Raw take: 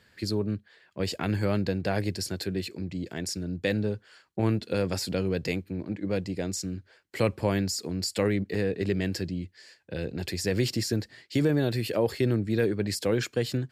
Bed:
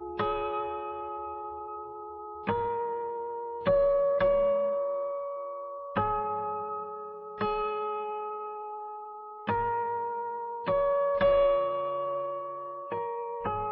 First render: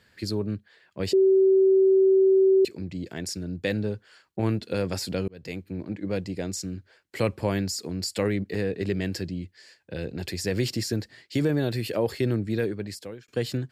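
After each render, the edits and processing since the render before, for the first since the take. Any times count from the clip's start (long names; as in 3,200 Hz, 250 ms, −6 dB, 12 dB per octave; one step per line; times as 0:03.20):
0:01.13–0:02.65: beep over 383 Hz −15 dBFS
0:05.28–0:05.74: fade in
0:12.49–0:13.28: fade out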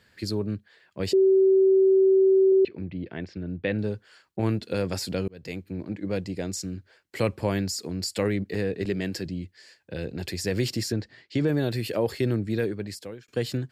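0:02.52–0:03.79: low-pass filter 3,100 Hz 24 dB per octave
0:08.85–0:09.26: high-pass filter 120 Hz
0:10.92–0:11.48: high-frequency loss of the air 100 metres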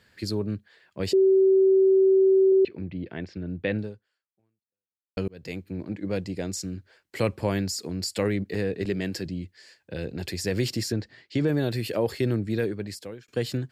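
0:03.77–0:05.17: fade out exponential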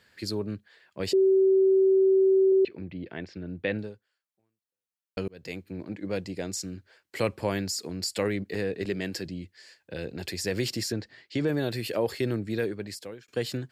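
low-shelf EQ 260 Hz −6.5 dB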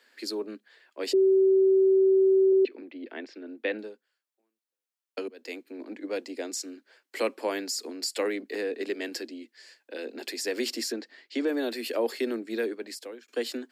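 Butterworth high-pass 230 Hz 96 dB per octave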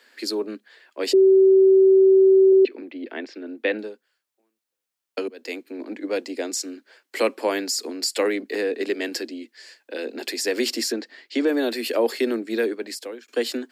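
level +6.5 dB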